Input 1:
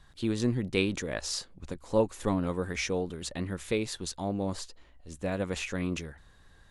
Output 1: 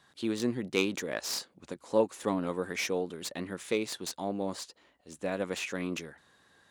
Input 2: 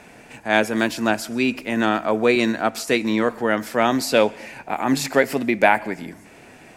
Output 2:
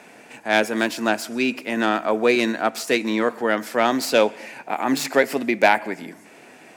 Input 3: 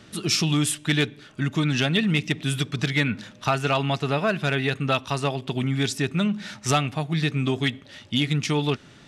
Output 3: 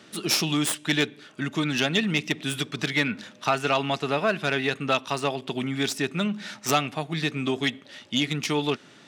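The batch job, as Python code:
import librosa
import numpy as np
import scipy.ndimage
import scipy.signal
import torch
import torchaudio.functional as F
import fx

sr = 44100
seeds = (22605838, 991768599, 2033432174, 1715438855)

y = fx.tracing_dist(x, sr, depth_ms=0.037)
y = scipy.signal.sosfilt(scipy.signal.butter(2, 220.0, 'highpass', fs=sr, output='sos'), y)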